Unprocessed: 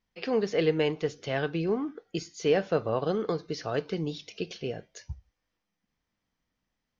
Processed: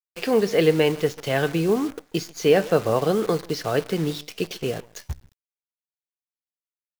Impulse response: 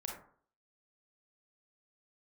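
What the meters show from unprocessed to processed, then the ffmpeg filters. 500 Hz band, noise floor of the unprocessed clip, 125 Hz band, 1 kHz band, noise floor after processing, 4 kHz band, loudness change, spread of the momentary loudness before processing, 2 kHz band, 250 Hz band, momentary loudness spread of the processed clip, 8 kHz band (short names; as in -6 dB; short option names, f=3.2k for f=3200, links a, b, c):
+7.0 dB, -84 dBFS, +7.0 dB, +7.0 dB, under -85 dBFS, +7.5 dB, +7.0 dB, 12 LU, +7.0 dB, +7.0 dB, 12 LU, n/a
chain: -filter_complex "[0:a]asplit=2[a][b];[b]adelay=139.9,volume=-21dB,highshelf=f=4k:g=-3.15[c];[a][c]amix=inputs=2:normalize=0,acrusher=bits=8:dc=4:mix=0:aa=0.000001,volume=7dB"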